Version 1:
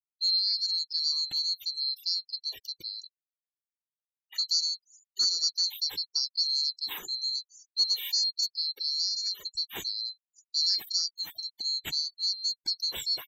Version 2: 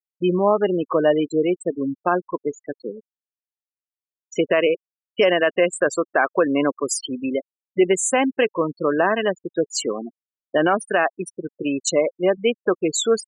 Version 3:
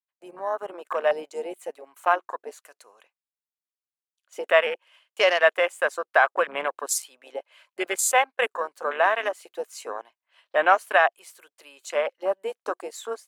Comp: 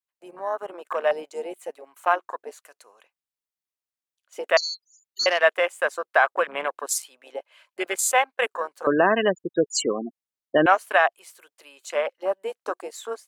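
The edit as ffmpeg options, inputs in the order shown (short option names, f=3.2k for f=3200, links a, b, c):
-filter_complex "[2:a]asplit=3[a][b][c];[a]atrim=end=4.572[d];[0:a]atrim=start=4.568:end=5.262[e];[b]atrim=start=5.258:end=8.872[f];[1:a]atrim=start=8.868:end=10.662[g];[c]atrim=start=10.658[h];[d][e]acrossfade=d=0.004:c1=hsin:c2=hsin[i];[i][f]acrossfade=d=0.004:c1=hsin:c2=hsin[j];[j][g]acrossfade=d=0.004:c1=hsin:c2=hsin[k];[k][h]acrossfade=d=0.004:c1=hsin:c2=hsin"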